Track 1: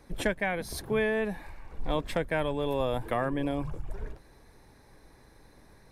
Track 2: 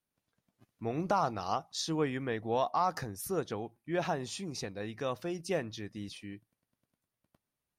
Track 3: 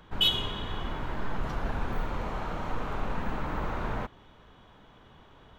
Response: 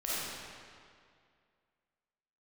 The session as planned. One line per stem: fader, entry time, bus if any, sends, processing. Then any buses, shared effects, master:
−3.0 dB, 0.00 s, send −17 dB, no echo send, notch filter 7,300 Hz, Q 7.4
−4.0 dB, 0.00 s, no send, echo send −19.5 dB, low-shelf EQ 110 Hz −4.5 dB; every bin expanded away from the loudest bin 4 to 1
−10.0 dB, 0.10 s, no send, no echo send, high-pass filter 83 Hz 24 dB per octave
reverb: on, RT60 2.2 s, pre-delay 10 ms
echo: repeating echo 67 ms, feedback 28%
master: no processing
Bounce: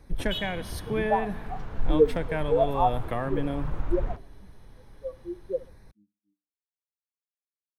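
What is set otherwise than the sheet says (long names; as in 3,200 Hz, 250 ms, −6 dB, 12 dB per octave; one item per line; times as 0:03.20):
stem 1: send −17 dB → −23 dB
stem 2 −4.0 dB → +8.0 dB
master: extra low-shelf EQ 140 Hz +11.5 dB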